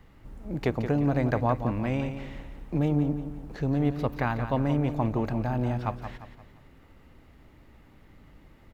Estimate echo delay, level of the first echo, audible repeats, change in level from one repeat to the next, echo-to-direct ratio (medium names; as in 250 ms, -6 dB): 174 ms, -9.5 dB, 4, -8.0 dB, -8.5 dB